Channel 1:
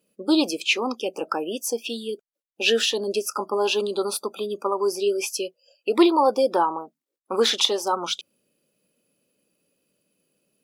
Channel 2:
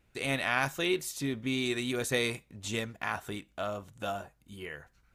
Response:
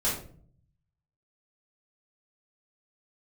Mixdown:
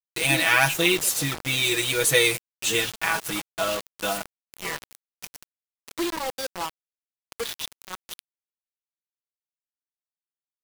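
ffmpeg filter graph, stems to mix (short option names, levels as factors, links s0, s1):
-filter_complex "[0:a]acrossover=split=2700[s0][s1];[s1]acompressor=threshold=0.0316:ratio=4:attack=1:release=60[s2];[s0][s2]amix=inputs=2:normalize=0,volume=0.15[s3];[1:a]aecho=1:1:6.2:0.78,volume=1.06[s4];[s3][s4]amix=inputs=2:normalize=0,highshelf=f=2100:g=12,aecho=1:1:6.1:0.7,acrusher=bits=4:mix=0:aa=0.000001"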